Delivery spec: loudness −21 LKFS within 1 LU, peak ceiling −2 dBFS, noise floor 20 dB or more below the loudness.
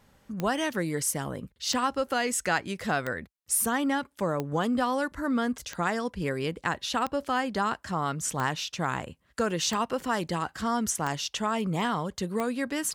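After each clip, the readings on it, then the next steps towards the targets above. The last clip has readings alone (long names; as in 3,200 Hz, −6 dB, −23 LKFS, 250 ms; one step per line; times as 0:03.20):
number of clicks 10; integrated loudness −29.0 LKFS; sample peak −12.0 dBFS; target loudness −21.0 LKFS
→ click removal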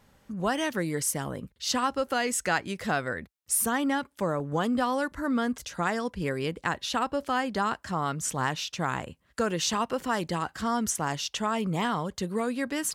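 number of clicks 0; integrated loudness −29.0 LKFS; sample peak −12.0 dBFS; target loudness −21.0 LKFS
→ level +8 dB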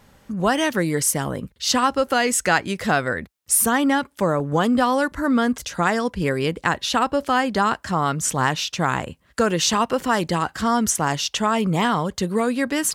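integrated loudness −21.0 LKFS; sample peak −4.0 dBFS; background noise floor −59 dBFS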